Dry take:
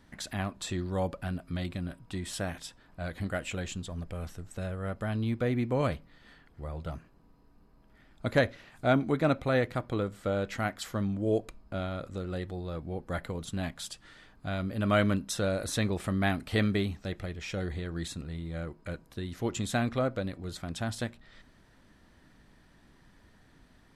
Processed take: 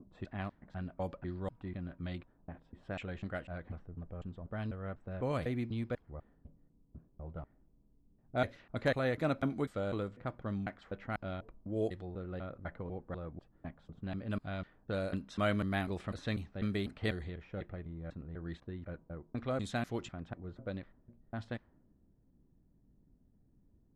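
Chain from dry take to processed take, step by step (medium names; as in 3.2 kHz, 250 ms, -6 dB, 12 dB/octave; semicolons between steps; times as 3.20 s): slices played last to first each 248 ms, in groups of 3; level-controlled noise filter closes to 300 Hz, open at -25 dBFS; trim -6.5 dB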